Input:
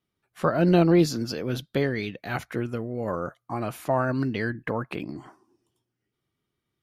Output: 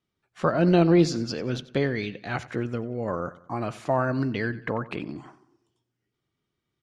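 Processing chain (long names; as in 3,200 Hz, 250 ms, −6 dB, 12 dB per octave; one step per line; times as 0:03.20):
low-pass filter 7,900 Hz 24 dB per octave
on a send: repeating echo 92 ms, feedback 45%, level −18 dB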